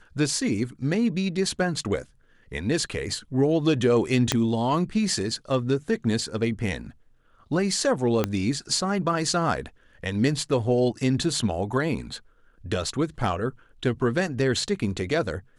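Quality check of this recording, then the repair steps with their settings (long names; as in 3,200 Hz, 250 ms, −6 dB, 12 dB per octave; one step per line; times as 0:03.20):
0:04.32: click −6 dBFS
0:08.24: click −9 dBFS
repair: click removal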